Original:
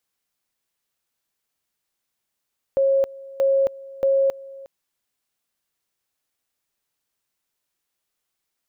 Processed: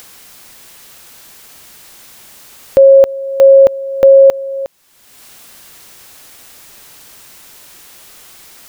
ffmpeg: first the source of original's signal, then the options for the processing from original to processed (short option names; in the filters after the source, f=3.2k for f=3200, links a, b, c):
-f lavfi -i "aevalsrc='pow(10,(-15-21*gte(mod(t,0.63),0.27))/20)*sin(2*PI*544*t)':d=1.89:s=44100"
-filter_complex "[0:a]asplit=2[a][b];[b]acompressor=mode=upward:threshold=-27dB:ratio=2.5,volume=0.5dB[c];[a][c]amix=inputs=2:normalize=0,alimiter=level_in=10.5dB:limit=-1dB:release=50:level=0:latency=1"